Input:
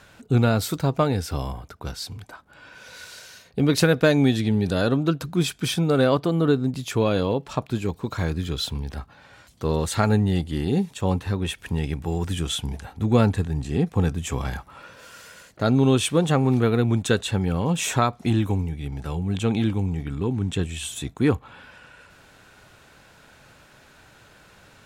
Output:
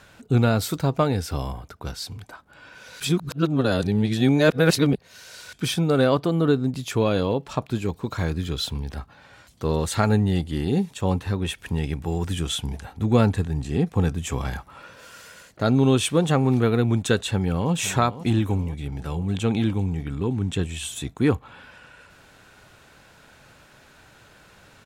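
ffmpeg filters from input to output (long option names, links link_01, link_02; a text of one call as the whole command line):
ffmpeg -i in.wav -filter_complex "[0:a]asplit=2[link_01][link_02];[link_02]afade=type=in:start_time=17.24:duration=0.01,afade=type=out:start_time=17.72:duration=0.01,aecho=0:1:510|1020|1530|2040|2550|3060:0.188365|0.113019|0.0678114|0.0406868|0.0244121|0.0146473[link_03];[link_01][link_03]amix=inputs=2:normalize=0,asplit=3[link_04][link_05][link_06];[link_04]atrim=end=3.002[link_07];[link_05]atrim=start=2.998:end=5.532,asetpts=PTS-STARTPTS,areverse[link_08];[link_06]atrim=start=5.528[link_09];[link_07][link_08]acrossfade=duration=0.004:curve1=hsin:curve2=hsin[link_10];[link_10][link_09]acrossfade=duration=0.004:curve1=hsin:curve2=hsin" out.wav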